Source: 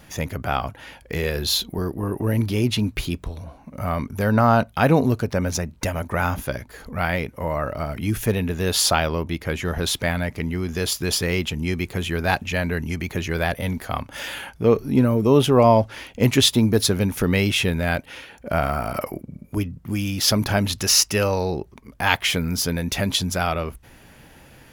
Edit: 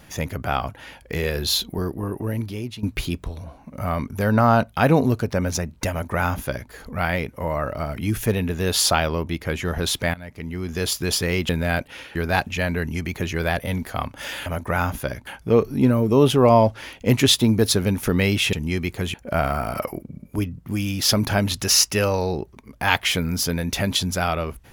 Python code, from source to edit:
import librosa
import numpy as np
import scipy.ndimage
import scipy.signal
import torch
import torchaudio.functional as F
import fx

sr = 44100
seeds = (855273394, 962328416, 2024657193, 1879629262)

y = fx.edit(x, sr, fx.fade_out_to(start_s=1.83, length_s=1.0, floor_db=-16.0),
    fx.duplicate(start_s=5.9, length_s=0.81, to_s=14.41),
    fx.fade_in_from(start_s=10.14, length_s=0.7, floor_db=-19.0),
    fx.swap(start_s=11.49, length_s=0.61, other_s=17.67, other_length_s=0.66), tone=tone)